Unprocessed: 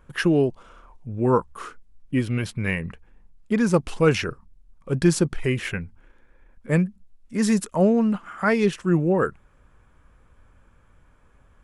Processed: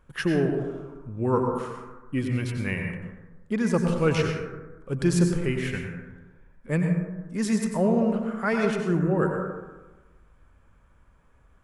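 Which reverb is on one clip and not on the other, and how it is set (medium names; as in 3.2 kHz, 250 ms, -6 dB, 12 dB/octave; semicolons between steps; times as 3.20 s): plate-style reverb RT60 1.2 s, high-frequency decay 0.35×, pre-delay 80 ms, DRR 2.5 dB; trim -5 dB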